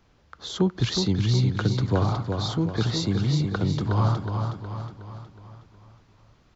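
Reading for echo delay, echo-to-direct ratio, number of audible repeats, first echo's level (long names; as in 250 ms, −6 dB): 366 ms, −4.5 dB, 5, −5.5 dB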